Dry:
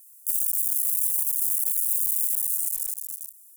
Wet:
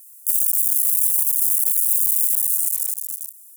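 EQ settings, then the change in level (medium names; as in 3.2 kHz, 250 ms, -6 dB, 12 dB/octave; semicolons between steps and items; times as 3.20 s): high-pass 600 Hz 12 dB/octave; tilt shelf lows -6 dB, about 1.1 kHz; 0.0 dB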